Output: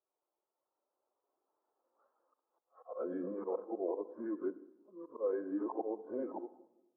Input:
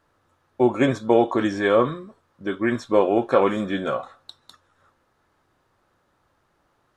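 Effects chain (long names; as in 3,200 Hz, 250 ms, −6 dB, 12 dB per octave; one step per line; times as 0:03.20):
played backwards from end to start
source passing by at 0:02.11, 19 m/s, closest 19 metres
dynamic equaliser 630 Hz, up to −4 dB, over −36 dBFS, Q 0.87
volume swells 255 ms
brickwall limiter −29.5 dBFS, peak gain reduction 11 dB
flat-topped band-pass 600 Hz, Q 0.82
on a send at −10 dB: convolution reverb RT60 1.4 s, pre-delay 56 ms
on the sum: every bin expanded away from the loudest bin 1.5 to 1
level +4 dB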